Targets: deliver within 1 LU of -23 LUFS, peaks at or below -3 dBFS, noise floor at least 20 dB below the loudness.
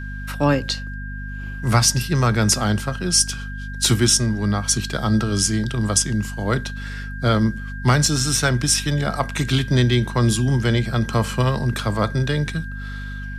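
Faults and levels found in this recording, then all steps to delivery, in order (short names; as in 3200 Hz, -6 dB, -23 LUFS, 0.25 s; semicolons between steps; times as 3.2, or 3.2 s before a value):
hum 50 Hz; harmonics up to 250 Hz; hum level -28 dBFS; steady tone 1600 Hz; tone level -35 dBFS; loudness -20.0 LUFS; peak -2.0 dBFS; loudness target -23.0 LUFS
-> notches 50/100/150/200/250 Hz; notch 1600 Hz, Q 30; gain -3 dB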